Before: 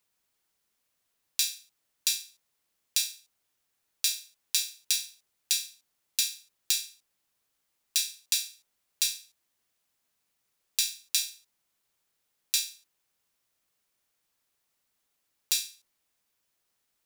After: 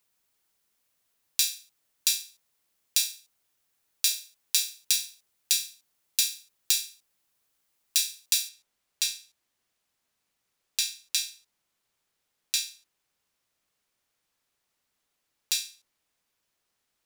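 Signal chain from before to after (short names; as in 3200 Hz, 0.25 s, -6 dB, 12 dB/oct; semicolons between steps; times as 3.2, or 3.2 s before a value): high shelf 9000 Hz +3 dB, from 8.49 s -6.5 dB; gain +1.5 dB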